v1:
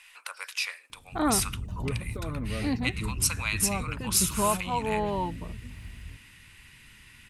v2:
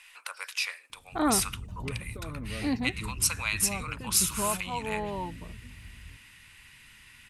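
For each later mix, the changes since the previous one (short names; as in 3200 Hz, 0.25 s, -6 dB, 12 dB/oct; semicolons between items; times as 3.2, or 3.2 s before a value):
background -5.0 dB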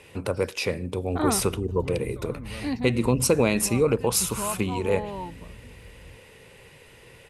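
first voice: remove HPF 1200 Hz 24 dB/oct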